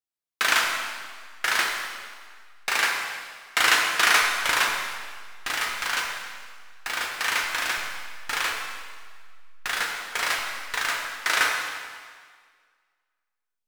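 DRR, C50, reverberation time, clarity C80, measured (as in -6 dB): -0.5 dB, 2.0 dB, 1.8 s, 3.5 dB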